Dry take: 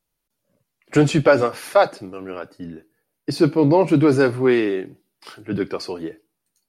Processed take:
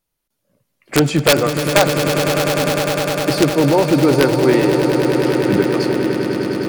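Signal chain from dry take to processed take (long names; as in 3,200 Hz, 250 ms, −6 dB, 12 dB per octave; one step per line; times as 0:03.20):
camcorder AGC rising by 5.2 dB per second
wrap-around overflow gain 5.5 dB
echo that builds up and dies away 101 ms, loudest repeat 8, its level −10.5 dB
level +1 dB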